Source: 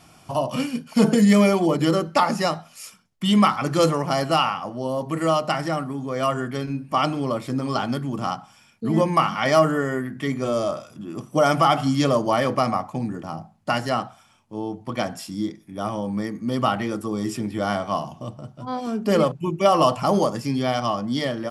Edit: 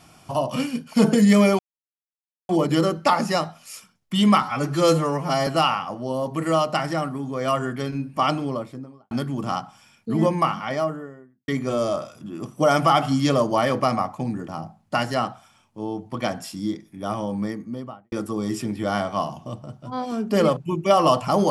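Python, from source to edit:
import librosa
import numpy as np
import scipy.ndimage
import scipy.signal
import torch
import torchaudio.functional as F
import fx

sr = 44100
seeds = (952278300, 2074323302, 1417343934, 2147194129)

y = fx.studio_fade_out(x, sr, start_s=7.01, length_s=0.85)
y = fx.studio_fade_out(y, sr, start_s=8.84, length_s=1.39)
y = fx.studio_fade_out(y, sr, start_s=16.1, length_s=0.77)
y = fx.edit(y, sr, fx.insert_silence(at_s=1.59, length_s=0.9),
    fx.stretch_span(start_s=3.52, length_s=0.7, factor=1.5), tone=tone)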